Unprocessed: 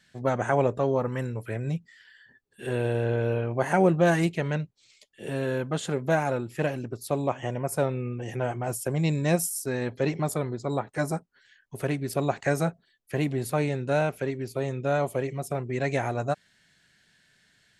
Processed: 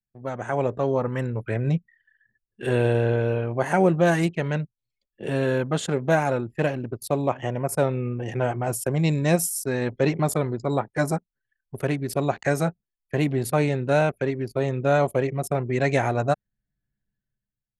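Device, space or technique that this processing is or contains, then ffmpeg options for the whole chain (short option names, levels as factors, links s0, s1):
voice memo with heavy noise removal: -af "anlmdn=0.251,dynaudnorm=f=130:g=9:m=5.01,volume=0.473"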